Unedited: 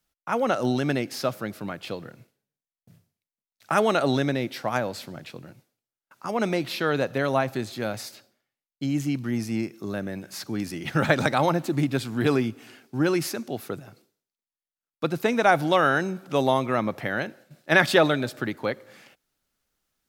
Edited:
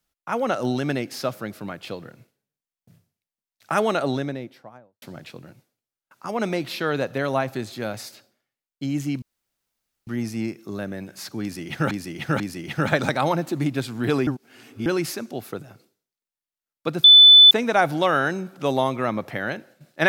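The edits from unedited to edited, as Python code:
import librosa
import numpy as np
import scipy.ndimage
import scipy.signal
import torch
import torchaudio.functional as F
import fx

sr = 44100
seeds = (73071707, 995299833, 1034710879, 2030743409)

y = fx.studio_fade_out(x, sr, start_s=3.8, length_s=1.22)
y = fx.edit(y, sr, fx.insert_room_tone(at_s=9.22, length_s=0.85),
    fx.repeat(start_s=10.57, length_s=0.49, count=3),
    fx.reverse_span(start_s=12.44, length_s=0.59),
    fx.insert_tone(at_s=15.21, length_s=0.47, hz=3500.0, db=-6.0), tone=tone)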